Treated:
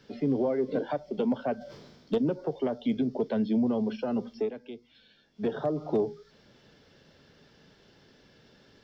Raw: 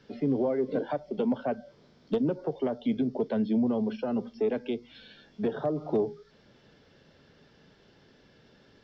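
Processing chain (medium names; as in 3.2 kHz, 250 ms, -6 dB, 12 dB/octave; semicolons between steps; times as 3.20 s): treble shelf 4.8 kHz +6.5 dB; 1.56–2.18 s: decay stretcher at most 37 dB/s; 4.40–5.47 s: dip -10.5 dB, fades 0.12 s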